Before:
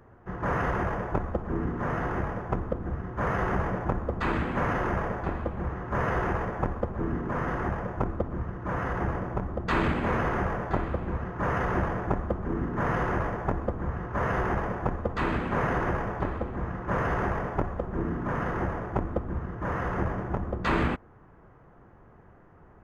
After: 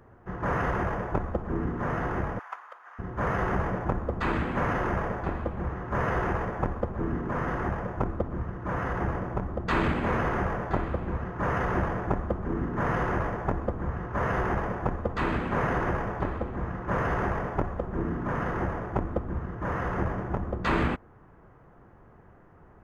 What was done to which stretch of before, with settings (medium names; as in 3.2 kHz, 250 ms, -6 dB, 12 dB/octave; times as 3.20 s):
2.39–2.99 s: high-pass 1 kHz 24 dB/octave